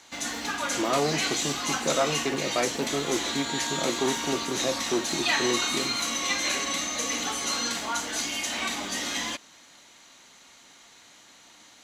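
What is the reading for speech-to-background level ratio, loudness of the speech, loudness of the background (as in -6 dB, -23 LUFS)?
-2.5 dB, -30.5 LUFS, -28.0 LUFS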